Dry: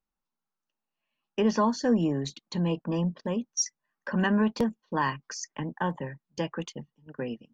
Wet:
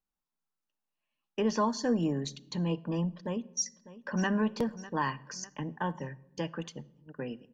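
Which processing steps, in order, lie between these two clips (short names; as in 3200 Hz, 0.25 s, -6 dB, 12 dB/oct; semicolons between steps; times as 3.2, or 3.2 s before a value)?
1.5–2.56 high shelf 6100 Hz +7 dB; 3.13–4.29 echo throw 0.6 s, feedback 50%, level -16.5 dB; shoebox room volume 3300 m³, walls furnished, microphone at 0.42 m; gain -4 dB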